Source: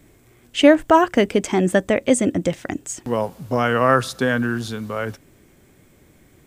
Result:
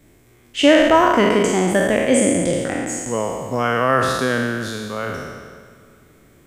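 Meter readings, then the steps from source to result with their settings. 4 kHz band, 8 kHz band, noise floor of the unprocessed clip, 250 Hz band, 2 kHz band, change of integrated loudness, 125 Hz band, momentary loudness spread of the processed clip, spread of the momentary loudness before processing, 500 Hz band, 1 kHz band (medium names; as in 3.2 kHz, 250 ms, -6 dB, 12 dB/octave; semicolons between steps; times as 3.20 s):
+4.0 dB, +5.0 dB, -54 dBFS, +1.0 dB, +3.0 dB, +1.5 dB, 0.0 dB, 13 LU, 14 LU, +1.5 dB, +2.0 dB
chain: spectral sustain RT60 1.59 s; spring tank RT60 3.7 s, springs 51/58 ms, chirp 35 ms, DRR 19 dB; trim -2.5 dB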